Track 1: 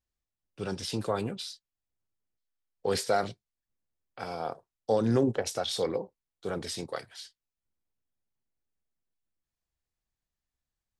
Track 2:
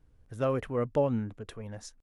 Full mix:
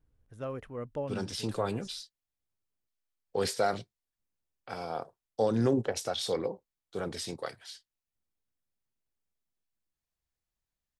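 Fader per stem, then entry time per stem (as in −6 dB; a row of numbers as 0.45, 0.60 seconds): −1.5, −9.0 decibels; 0.50, 0.00 seconds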